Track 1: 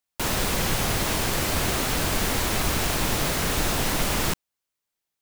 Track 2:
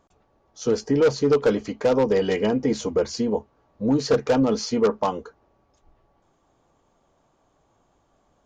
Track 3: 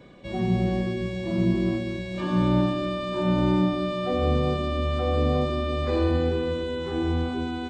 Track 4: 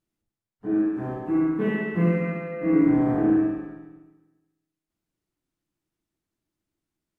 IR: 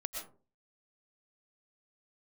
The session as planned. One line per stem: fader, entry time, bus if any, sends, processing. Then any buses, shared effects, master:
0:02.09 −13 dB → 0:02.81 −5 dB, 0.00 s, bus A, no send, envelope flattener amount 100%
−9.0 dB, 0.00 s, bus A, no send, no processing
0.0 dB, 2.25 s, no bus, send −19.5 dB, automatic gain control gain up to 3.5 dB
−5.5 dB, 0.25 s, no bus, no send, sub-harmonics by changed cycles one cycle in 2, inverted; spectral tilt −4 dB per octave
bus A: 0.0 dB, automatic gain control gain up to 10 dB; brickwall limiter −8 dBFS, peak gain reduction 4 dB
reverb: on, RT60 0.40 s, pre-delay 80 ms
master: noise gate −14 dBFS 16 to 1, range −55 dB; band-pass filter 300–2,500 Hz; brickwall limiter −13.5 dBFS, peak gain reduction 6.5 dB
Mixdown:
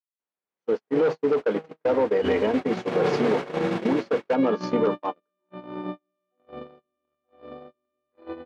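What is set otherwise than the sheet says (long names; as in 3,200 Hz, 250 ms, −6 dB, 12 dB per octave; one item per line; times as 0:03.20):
stem 1 −13.0 dB → −20.0 dB
stem 2 −9.0 dB → −2.0 dB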